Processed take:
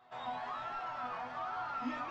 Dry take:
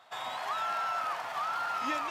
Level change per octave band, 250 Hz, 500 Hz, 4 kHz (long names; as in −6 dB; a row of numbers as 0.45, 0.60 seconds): +1.0, −5.0, −11.0 decibels